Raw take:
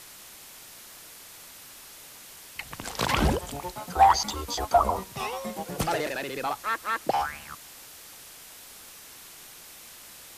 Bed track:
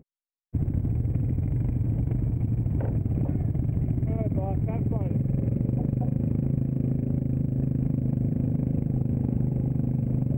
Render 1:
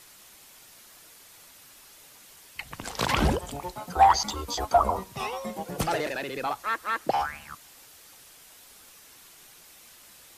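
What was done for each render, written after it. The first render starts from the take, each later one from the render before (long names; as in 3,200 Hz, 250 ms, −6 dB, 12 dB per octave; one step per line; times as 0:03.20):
broadband denoise 6 dB, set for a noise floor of −47 dBFS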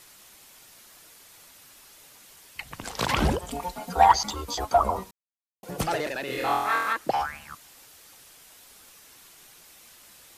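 0:03.50–0:04.12: comb filter 4.3 ms, depth 96%
0:05.11–0:05.63: silence
0:06.25–0:06.93: flutter between parallel walls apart 4.1 metres, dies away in 0.94 s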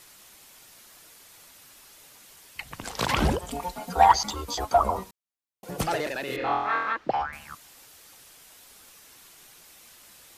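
0:06.36–0:07.33: high-frequency loss of the air 220 metres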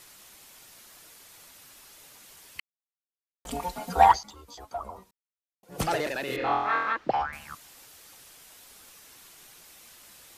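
0:02.60–0:03.45: silence
0:04.08–0:05.83: duck −15 dB, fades 0.13 s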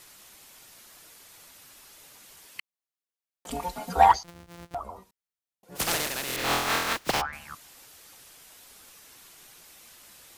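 0:02.46–0:03.50: high-pass filter 170 Hz
0:04.24–0:04.75: samples sorted by size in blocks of 256 samples
0:05.75–0:07.20: compressing power law on the bin magnitudes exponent 0.33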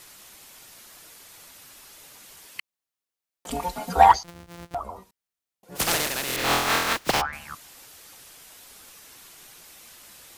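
level +3.5 dB
brickwall limiter −3 dBFS, peak gain reduction 1 dB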